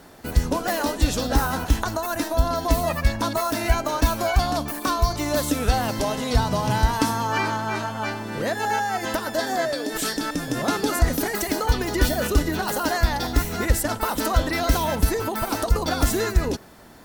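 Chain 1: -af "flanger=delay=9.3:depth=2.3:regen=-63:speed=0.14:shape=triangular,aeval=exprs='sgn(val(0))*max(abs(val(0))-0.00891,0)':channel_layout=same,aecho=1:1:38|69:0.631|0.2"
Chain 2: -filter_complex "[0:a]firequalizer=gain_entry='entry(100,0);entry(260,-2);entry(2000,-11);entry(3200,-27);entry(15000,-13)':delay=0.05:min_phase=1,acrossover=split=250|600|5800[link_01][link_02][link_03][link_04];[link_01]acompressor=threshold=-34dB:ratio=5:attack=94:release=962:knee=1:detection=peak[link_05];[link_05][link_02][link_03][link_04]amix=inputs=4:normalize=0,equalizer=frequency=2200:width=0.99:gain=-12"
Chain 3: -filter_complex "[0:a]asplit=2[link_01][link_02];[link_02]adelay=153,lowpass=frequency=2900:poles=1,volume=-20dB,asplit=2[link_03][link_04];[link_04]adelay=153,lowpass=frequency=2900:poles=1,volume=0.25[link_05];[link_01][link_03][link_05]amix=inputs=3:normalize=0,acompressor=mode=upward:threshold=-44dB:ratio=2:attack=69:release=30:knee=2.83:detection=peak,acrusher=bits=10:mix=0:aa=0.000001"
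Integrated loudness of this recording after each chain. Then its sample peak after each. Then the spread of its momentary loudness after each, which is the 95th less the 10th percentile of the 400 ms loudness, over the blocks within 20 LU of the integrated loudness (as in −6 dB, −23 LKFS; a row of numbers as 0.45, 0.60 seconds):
−28.0, −31.5, −24.0 LKFS; −10.0, −13.5, −6.5 dBFS; 5, 4, 4 LU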